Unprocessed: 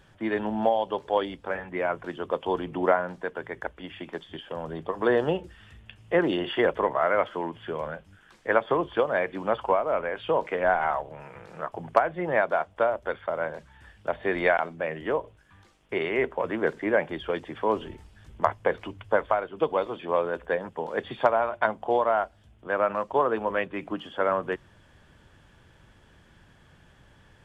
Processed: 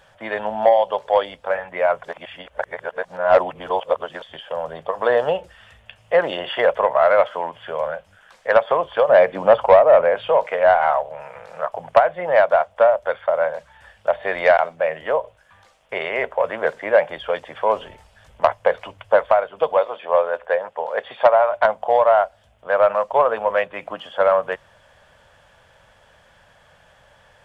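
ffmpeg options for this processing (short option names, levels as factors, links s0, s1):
-filter_complex "[0:a]asettb=1/sr,asplit=3[s0][s1][s2];[s0]atrim=end=9.094[s3];[s1]atrim=start=9.09:end=10.28,asetpts=PTS-STARTPTS,afade=t=in:d=0.004:c=qsin,afade=t=out:st=1.186:d=0.004:c=qsin,equalizer=f=200:w=0.35:g=10.5[s4];[s2]atrim=start=10.276[s5];[s3][s4]acrossfade=d=0.004:c1=hsin:c2=qsin[s6];[s6][s5]acrossfade=d=0.004:c1=qsin:c2=hsin,asettb=1/sr,asplit=3[s7][s8][s9];[s7]atrim=end=19.774[s10];[s8]atrim=start=19.77:end=21.51,asetpts=PTS-STARTPTS,afade=t=in:d=0.004:c=qsin,afade=t=out:st=1.736:d=0.004:c=qsin,bass=f=250:g=-11,treble=f=4000:g=-8[s11];[s9]atrim=start=21.506[s12];[s10][s11]acrossfade=d=0.004:c1=hsin:c2=qsin[s13];[s13][s12]acrossfade=d=0.004:c1=qsin:c2=hsin,asplit=3[s14][s15][s16];[s14]atrim=end=2.042[s17];[s15]atrim=start=2.038:end=4.222,asetpts=PTS-STARTPTS,areverse[s18];[s16]atrim=start=4.218[s19];[s17][s18]acrossfade=d=0.004:c1=hsin:c2=hsin[s20];[s20][s19]acrossfade=d=0.004:c1=hsin:c2=hsin,lowshelf=f=440:t=q:w=3:g=-8.5,acontrast=63,volume=0.891"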